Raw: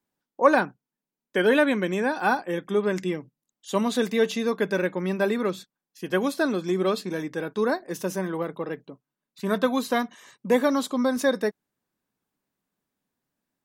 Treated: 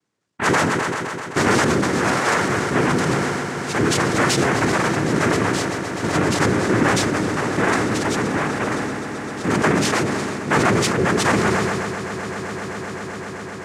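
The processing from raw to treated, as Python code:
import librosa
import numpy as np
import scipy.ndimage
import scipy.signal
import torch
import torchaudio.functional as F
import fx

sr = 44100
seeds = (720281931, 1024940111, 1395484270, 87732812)

y = 10.0 ** (-22.0 / 20.0) * np.tanh(x / 10.0 ** (-22.0 / 20.0))
y = fx.noise_vocoder(y, sr, seeds[0], bands=3)
y = fx.echo_swell(y, sr, ms=129, loudest=8, wet_db=-17.5)
y = fx.sustainer(y, sr, db_per_s=20.0)
y = F.gain(torch.from_numpy(y), 7.5).numpy()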